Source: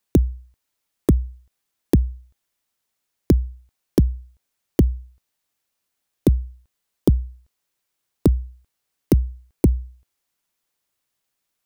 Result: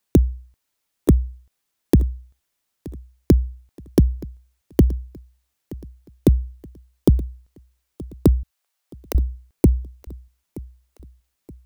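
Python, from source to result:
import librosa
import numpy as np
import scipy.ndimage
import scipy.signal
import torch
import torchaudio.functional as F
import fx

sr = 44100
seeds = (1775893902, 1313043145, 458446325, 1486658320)

y = fx.highpass(x, sr, hz=560.0, slope=24, at=(8.43, 9.15))
y = fx.echo_feedback(y, sr, ms=924, feedback_pct=42, wet_db=-20.0)
y = F.gain(torch.from_numpy(y), 1.5).numpy()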